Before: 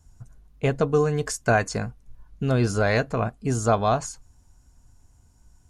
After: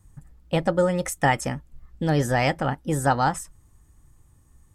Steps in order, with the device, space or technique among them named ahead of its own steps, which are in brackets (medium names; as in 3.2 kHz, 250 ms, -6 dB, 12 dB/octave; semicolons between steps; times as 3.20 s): nightcore (tape speed +20%)